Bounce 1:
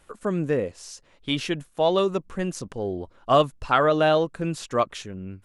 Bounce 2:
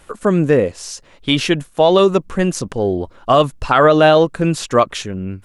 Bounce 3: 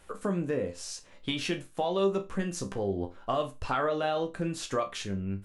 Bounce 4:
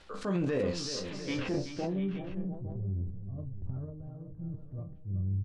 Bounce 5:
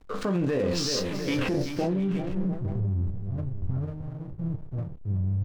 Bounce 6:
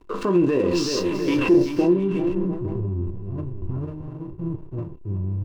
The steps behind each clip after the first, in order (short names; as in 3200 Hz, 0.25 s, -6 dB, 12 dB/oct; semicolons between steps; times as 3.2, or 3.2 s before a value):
maximiser +12 dB; gain -1 dB
compressor 3:1, threshold -19 dBFS, peak gain reduction 9.5 dB; resonator bank C2 sus4, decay 0.24 s
low-pass sweep 4600 Hz -> 110 Hz, 1.01–2.14; transient shaper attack -6 dB, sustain +8 dB; tapped delay 0.379/0.7/0.858 s -10.5/-13.5/-15 dB
in parallel at -1 dB: negative-ratio compressor -34 dBFS, ratio -0.5; on the sum: backlash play -39 dBFS; gain +2.5 dB
small resonant body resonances 350/1000/2700 Hz, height 15 dB, ringing for 45 ms